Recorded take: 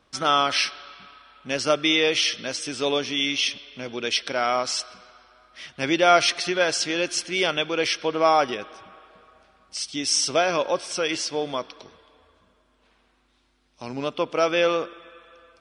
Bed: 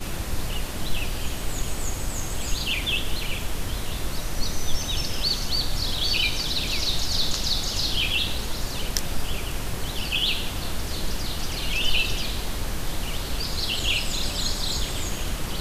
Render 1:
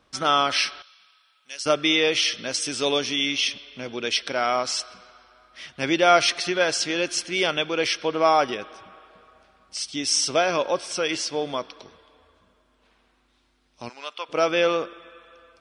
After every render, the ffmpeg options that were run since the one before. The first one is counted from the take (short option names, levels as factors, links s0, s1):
-filter_complex "[0:a]asettb=1/sr,asplit=3[s0][s1][s2];[s0]atrim=end=0.824[s3];[s1]atrim=start=0.82:end=1.66,asetpts=PTS-STARTPTS,afade=t=in:d=0.004:c=qsin,afade=t=out:st=0.836:d=0.004:c=qsin,aderivative[s4];[s2]atrim=start=1.656[s5];[s3][s4]acrossfade=d=0.004:c1=hsin:c2=qsin[s6];[s6][s5]acrossfade=d=0.004:c1=qsin:c2=hsin,asettb=1/sr,asplit=3[s7][s8][s9];[s7]atrim=end=2.544[s10];[s8]atrim=start=2.54:end=3.16,asetpts=PTS-STARTPTS,afade=t=in:d=0.004:c=qsin,afade=t=out:st=0.616:d=0.004:c=qsin,highshelf=f=4700:g=8[s11];[s9]atrim=start=3.156[s12];[s10][s11]acrossfade=d=0.004:c1=hsin:c2=qsin[s13];[s13][s12]acrossfade=d=0.004:c1=qsin:c2=hsin,asplit=3[s14][s15][s16];[s14]afade=t=out:st=13.88:d=0.02[s17];[s15]highpass=1100,afade=t=in:st=13.88:d=0.02,afade=t=out:st=14.28:d=0.02[s18];[s16]afade=t=in:st=14.28:d=0.02[s19];[s17][s18][s19]amix=inputs=3:normalize=0"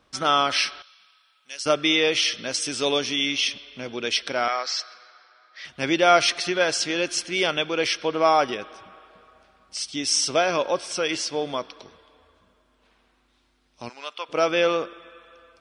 -filter_complex "[0:a]asettb=1/sr,asplit=3[s0][s1][s2];[s0]atrim=end=4.484[s3];[s1]atrim=start=4.48:end=5.65,asetpts=PTS-STARTPTS,afade=t=in:d=0.004:c=qsin,afade=t=out:st=1.166:d=0.004:c=qsin,highpass=f=400:w=0.5412,highpass=f=400:w=1.3066,equalizer=f=410:t=q:w=4:g=-6,equalizer=f=640:t=q:w=4:g=-6,equalizer=f=970:t=q:w=4:g=-5,equalizer=f=1800:t=q:w=4:g=6,equalizer=f=2900:t=q:w=4:g=-6,equalizer=f=4500:t=q:w=4:g=5,lowpass=f=5700:w=0.5412,lowpass=f=5700:w=1.3066[s4];[s2]atrim=start=5.646[s5];[s3][s4]acrossfade=d=0.004:c1=hsin:c2=qsin[s6];[s6][s5]acrossfade=d=0.004:c1=qsin:c2=hsin"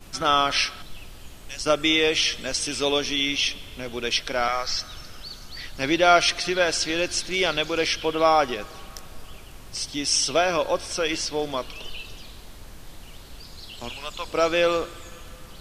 -filter_complex "[1:a]volume=0.188[s0];[0:a][s0]amix=inputs=2:normalize=0"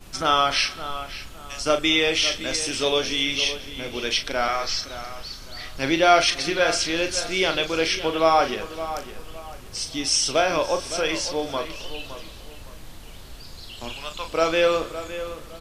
-filter_complex "[0:a]asplit=2[s0][s1];[s1]adelay=37,volume=0.398[s2];[s0][s2]amix=inputs=2:normalize=0,asplit=2[s3][s4];[s4]adelay=563,lowpass=f=3700:p=1,volume=0.251,asplit=2[s5][s6];[s6]adelay=563,lowpass=f=3700:p=1,volume=0.31,asplit=2[s7][s8];[s8]adelay=563,lowpass=f=3700:p=1,volume=0.31[s9];[s3][s5][s7][s9]amix=inputs=4:normalize=0"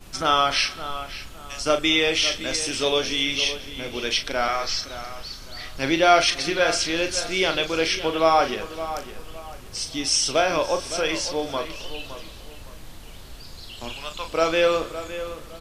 -af anull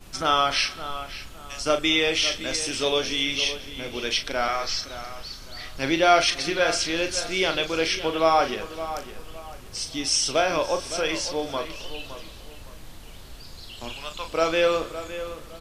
-af "volume=0.841"